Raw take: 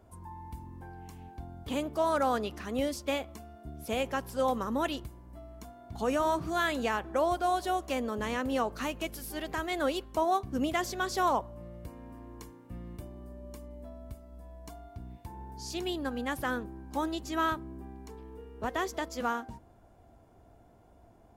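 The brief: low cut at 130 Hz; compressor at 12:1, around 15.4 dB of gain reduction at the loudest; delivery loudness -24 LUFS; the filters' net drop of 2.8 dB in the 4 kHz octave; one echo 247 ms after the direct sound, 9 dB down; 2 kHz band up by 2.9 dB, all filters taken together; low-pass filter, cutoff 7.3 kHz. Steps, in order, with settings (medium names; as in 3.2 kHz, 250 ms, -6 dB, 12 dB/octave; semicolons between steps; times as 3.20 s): high-pass 130 Hz; low-pass 7.3 kHz; peaking EQ 2 kHz +5 dB; peaking EQ 4 kHz -6 dB; compression 12:1, threshold -39 dBFS; delay 247 ms -9 dB; trim +20.5 dB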